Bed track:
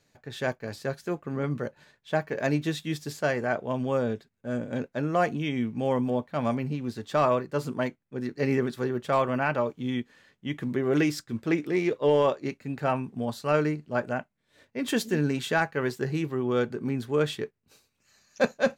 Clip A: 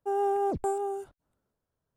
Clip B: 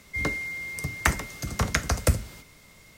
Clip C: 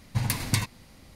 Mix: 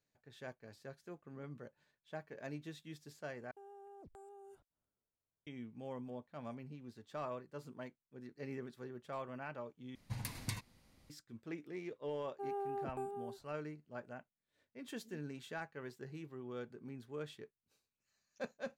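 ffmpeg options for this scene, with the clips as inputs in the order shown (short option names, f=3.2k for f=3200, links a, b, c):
-filter_complex "[1:a]asplit=2[a][b];[0:a]volume=-19.5dB[c];[a]acompressor=threshold=-37dB:ratio=16:attack=0.72:release=123:knee=1:detection=peak[d];[b]equalizer=f=6.7k:w=1.7:g=-13[e];[c]asplit=3[f][g][h];[f]atrim=end=3.514[i];[d]atrim=end=1.96,asetpts=PTS-STARTPTS,volume=-14.5dB[j];[g]atrim=start=5.466:end=9.954[k];[3:a]atrim=end=1.15,asetpts=PTS-STARTPTS,volume=-15.5dB[l];[h]atrim=start=11.096[m];[e]atrim=end=1.96,asetpts=PTS-STARTPTS,volume=-13.5dB,afade=t=in:d=0.004:c=hsin,afade=t=out:st=1.956:d=0.004:c=hsin,adelay=12330[n];[i][j]acrossfade=d=0.004:c1=hsin:c2=hsin[o];[o][k]acrossfade=d=0.004:c1=hsin:c2=hsin[p];[p][l]acrossfade=d=0.004:c1=hsin:c2=hsin[q];[q][m]acrossfade=d=0.004:c1=hsin:c2=hsin[r];[r][n]amix=inputs=2:normalize=0"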